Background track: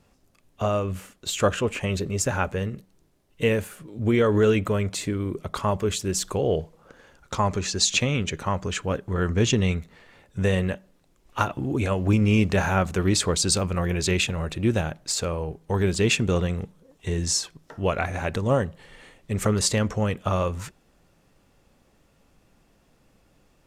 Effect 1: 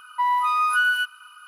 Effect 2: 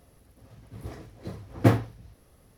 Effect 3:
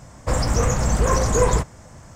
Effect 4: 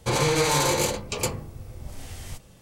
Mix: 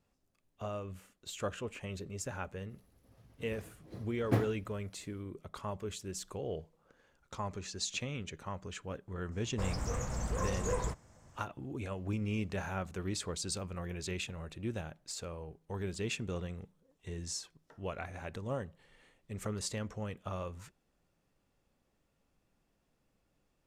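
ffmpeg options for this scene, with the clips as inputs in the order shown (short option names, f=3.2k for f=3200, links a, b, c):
-filter_complex "[0:a]volume=-15.5dB[a];[2:a]atrim=end=2.57,asetpts=PTS-STARTPTS,volume=-10.5dB,afade=t=in:d=0.05,afade=t=out:st=2.52:d=0.05,adelay=2670[b];[3:a]atrim=end=2.15,asetpts=PTS-STARTPTS,volume=-16.5dB,afade=t=in:d=0.02,afade=t=out:st=2.13:d=0.02,adelay=9310[c];[a][b][c]amix=inputs=3:normalize=0"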